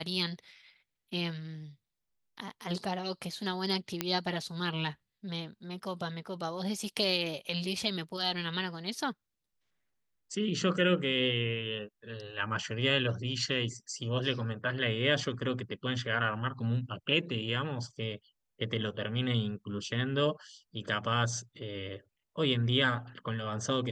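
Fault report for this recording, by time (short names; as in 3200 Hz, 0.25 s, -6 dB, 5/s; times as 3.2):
4.01 pop -13 dBFS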